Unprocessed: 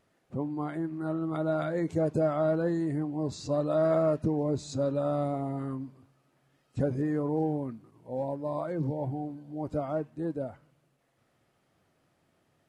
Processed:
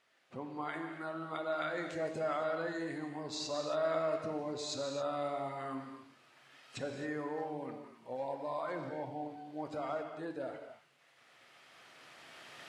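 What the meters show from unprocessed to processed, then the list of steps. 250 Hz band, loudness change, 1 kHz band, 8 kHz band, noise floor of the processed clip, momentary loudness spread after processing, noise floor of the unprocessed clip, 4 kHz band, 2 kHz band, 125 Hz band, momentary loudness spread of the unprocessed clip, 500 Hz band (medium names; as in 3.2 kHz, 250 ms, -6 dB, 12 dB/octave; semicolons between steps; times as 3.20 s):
-12.0 dB, -8.0 dB, -2.0 dB, +1.5 dB, -66 dBFS, 16 LU, -72 dBFS, +5.5 dB, +3.0 dB, -17.0 dB, 11 LU, -7.5 dB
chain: recorder AGC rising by 9 dB/s; in parallel at -1 dB: peak limiter -24 dBFS, peak gain reduction 8 dB; on the sum: band-pass filter 2.8 kHz, Q 0.77; gated-style reverb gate 300 ms flat, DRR 4.5 dB; trim -1 dB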